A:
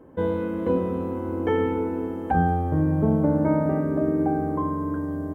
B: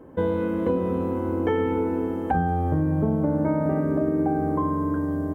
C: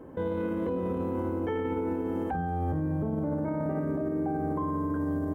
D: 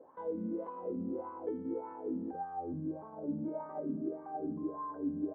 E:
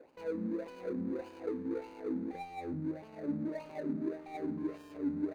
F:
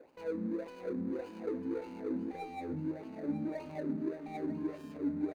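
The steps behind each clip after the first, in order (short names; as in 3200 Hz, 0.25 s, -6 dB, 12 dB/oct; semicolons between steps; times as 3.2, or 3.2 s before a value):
compressor, threshold -22 dBFS, peak gain reduction 6.5 dB; gain +3 dB
limiter -23 dBFS, peak gain reduction 11.5 dB
wah 1.7 Hz 210–1100 Hz, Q 5.1; gain +1 dB
median filter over 41 samples; gain +1.5 dB
echo 0.947 s -12 dB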